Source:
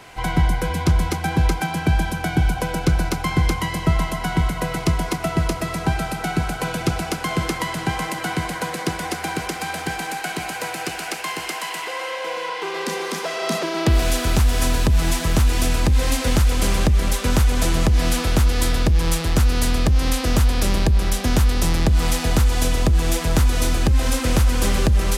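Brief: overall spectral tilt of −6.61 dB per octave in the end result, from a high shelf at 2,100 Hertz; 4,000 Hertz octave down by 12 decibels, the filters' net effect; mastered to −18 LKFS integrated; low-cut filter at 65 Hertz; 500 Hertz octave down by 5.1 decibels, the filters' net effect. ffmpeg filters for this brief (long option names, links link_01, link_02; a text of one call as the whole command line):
ffmpeg -i in.wav -af "highpass=65,equalizer=frequency=500:width_type=o:gain=-6,highshelf=frequency=2100:gain=-9,equalizer=frequency=4000:width_type=o:gain=-7,volume=7dB" out.wav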